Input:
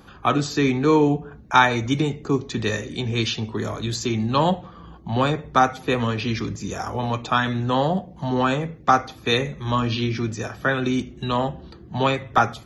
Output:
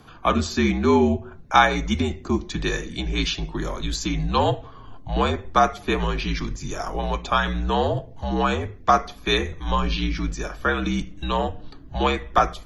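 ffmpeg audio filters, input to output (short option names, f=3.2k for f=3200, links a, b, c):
-af "asubboost=boost=5:cutoff=71,afreqshift=-61"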